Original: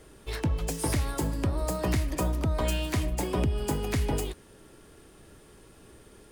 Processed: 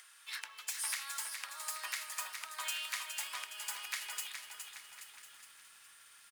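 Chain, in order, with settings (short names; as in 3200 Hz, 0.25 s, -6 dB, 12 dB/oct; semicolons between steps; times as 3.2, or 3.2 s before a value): HPF 1300 Hz 24 dB/oct; upward compressor, threshold -52 dBFS; on a send: echo 1.05 s -17 dB; on the sum: lo-fi delay 0.415 s, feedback 55%, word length 10-bit, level -6.5 dB; gain -2 dB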